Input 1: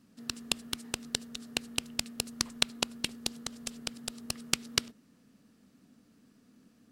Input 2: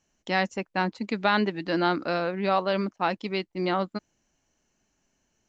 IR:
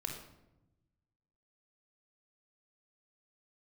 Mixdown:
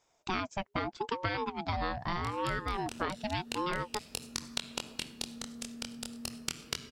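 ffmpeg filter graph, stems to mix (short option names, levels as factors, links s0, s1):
-filter_complex "[0:a]flanger=delay=22.5:depth=3.4:speed=0.39,adelay=1950,volume=0.75,asplit=2[s0][s1];[s1]volume=0.531[s2];[1:a]aeval=exprs='val(0)*sin(2*PI*560*n/s+560*0.3/0.8*sin(2*PI*0.8*n/s))':c=same,volume=1.41,asplit=2[s3][s4];[s4]apad=whole_len=390797[s5];[s0][s5]sidechaincompress=threshold=0.0251:ratio=8:attack=16:release=104[s6];[2:a]atrim=start_sample=2205[s7];[s2][s7]afir=irnorm=-1:irlink=0[s8];[s6][s3][s8]amix=inputs=3:normalize=0,acompressor=threshold=0.0316:ratio=6"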